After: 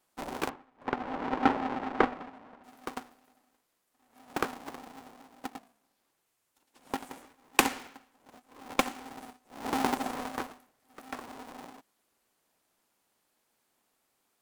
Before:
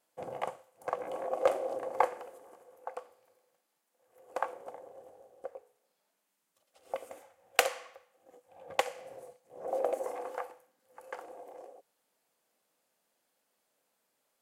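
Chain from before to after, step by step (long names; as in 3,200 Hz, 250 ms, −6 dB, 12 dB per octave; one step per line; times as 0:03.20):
sub-harmonics by changed cycles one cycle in 2, inverted
0:00.49–0:02.64: low-pass filter 2,400 Hz 12 dB per octave
level +2.5 dB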